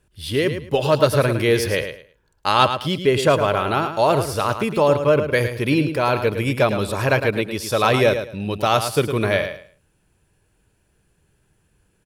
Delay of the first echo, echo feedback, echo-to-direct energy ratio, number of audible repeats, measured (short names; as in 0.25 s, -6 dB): 0.108 s, 22%, -9.0 dB, 2